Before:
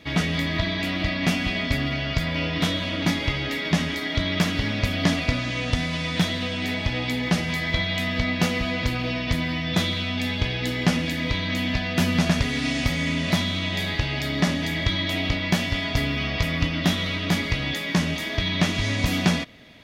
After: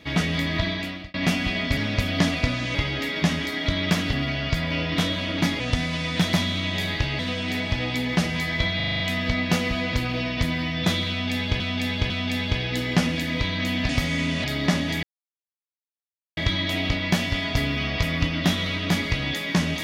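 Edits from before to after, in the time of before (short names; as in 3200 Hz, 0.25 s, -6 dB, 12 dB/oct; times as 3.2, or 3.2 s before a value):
0.68–1.14 fade out
1.77–3.24 swap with 4.62–5.6
7.9 stutter 0.04 s, 7 plays
10–10.5 loop, 3 plays
11.79–12.77 cut
13.32–14.18 move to 6.33
14.77 insert silence 1.34 s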